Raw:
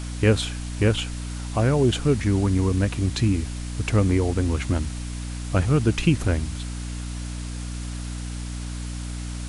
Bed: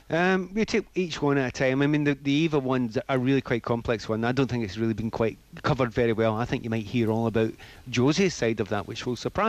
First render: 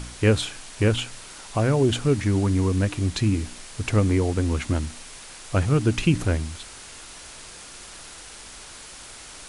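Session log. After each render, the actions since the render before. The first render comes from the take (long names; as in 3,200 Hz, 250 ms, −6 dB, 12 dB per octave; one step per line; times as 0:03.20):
hum removal 60 Hz, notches 5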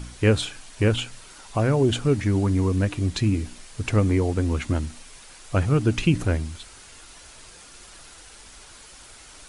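broadband denoise 6 dB, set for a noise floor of −42 dBFS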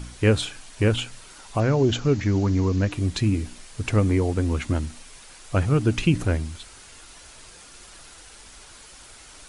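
0:01.60–0:02.92: bad sample-rate conversion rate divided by 3×, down none, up filtered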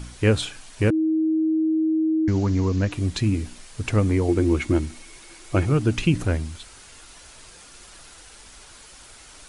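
0:00.90–0:02.28: beep over 317 Hz −18 dBFS
0:04.28–0:05.72: hollow resonant body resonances 340/2,200 Hz, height 16 dB, ringing for 100 ms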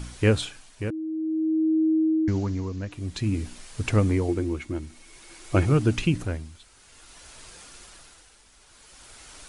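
amplitude tremolo 0.53 Hz, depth 70%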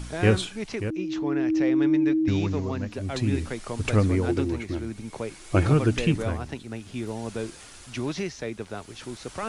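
mix in bed −8 dB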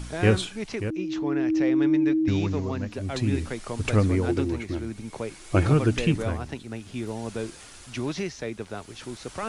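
no processing that can be heard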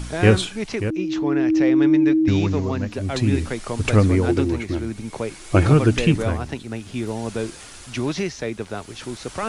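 level +5.5 dB
brickwall limiter −3 dBFS, peak gain reduction 1 dB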